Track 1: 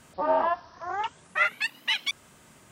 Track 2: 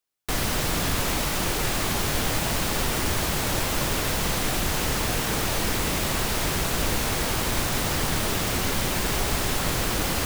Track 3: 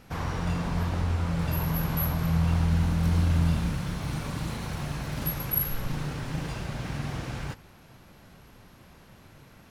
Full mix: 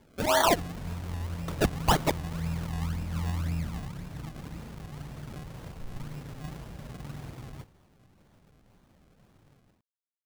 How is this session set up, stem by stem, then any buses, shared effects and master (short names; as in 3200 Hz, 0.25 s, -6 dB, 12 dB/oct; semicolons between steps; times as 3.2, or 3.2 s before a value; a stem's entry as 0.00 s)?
-2.5 dB, 0.00 s, muted 0.63–1.48, no send, dry
off
-13.5 dB, 0.10 s, no send, median filter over 15 samples; flange 0.45 Hz, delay 3.7 ms, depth 7.9 ms, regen -73%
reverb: off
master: high shelf 3400 Hz -10 dB; AGC gain up to 10 dB; decimation with a swept rate 33×, swing 100% 1.9 Hz